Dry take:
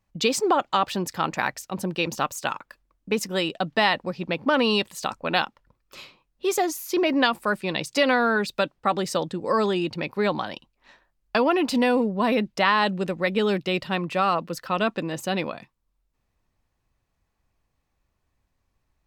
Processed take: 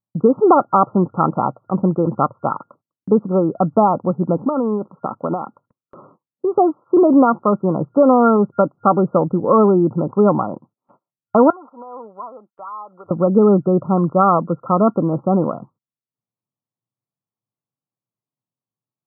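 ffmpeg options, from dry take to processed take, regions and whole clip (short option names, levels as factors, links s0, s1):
-filter_complex "[0:a]asettb=1/sr,asplit=3[s0][s1][s2];[s0]atrim=end=4.374[s3];[s1]atrim=start=4.37:end=6.58,asetpts=PTS-STARTPTS,afade=t=in:d=0.004:c=qsin,afade=t=out:st=2.206:d=0.004:c=qsin,highpass=150,acompressor=threshold=0.0562:ratio=5:attack=3.2:release=140:knee=1:detection=peak[s4];[s2]atrim=start=6.576[s5];[s3][s4]acrossfade=d=0.004:c1=hsin:c2=qsin[s6];[s6][s5]acrossfade=d=0.004:c1=qsin:c2=hsin,asettb=1/sr,asplit=3[s7][s8][s9];[s7]atrim=end=11.504[s10];[s8]atrim=start=11.5:end=13.11,asetpts=PTS-STARTPTS,afade=t=in:d=0.004:c=qsin,afade=t=out:st=1.606:d=0.004:c=qsin,highpass=1400,acompressor=threshold=0.0112:ratio=2:attack=3.2:release=140:knee=1:detection=peak[s11];[s9]atrim=start=13.106[s12];[s10][s11]acrossfade=d=0.004:c1=hsin:c2=qsin[s13];[s13][s12]acrossfade=d=0.004:c1=qsin:c2=hsin,afftfilt=real='re*between(b*sr/4096,100,1400)':imag='im*between(b*sr/4096,100,1400)':win_size=4096:overlap=0.75,agate=range=0.0501:threshold=0.00126:ratio=16:detection=peak,lowshelf=f=330:g=7,volume=2.37"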